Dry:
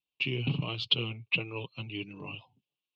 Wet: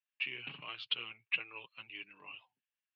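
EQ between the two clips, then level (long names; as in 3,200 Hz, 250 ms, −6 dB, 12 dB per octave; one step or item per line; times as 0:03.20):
resonant band-pass 1,700 Hz, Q 6.2
+10.0 dB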